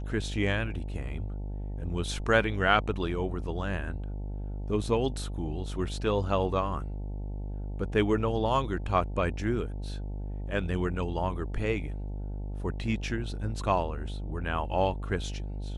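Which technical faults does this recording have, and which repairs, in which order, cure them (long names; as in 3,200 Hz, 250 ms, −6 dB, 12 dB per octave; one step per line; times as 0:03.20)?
mains buzz 50 Hz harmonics 18 −35 dBFS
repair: hum removal 50 Hz, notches 18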